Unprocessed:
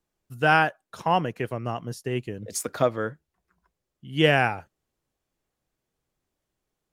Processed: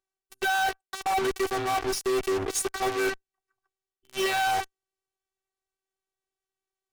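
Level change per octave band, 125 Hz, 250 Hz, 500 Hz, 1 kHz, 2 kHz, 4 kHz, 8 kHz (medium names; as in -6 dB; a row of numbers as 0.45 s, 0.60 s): -15.0 dB, -4.0 dB, -2.0 dB, -1.0 dB, -3.0 dB, -0.5 dB, +4.5 dB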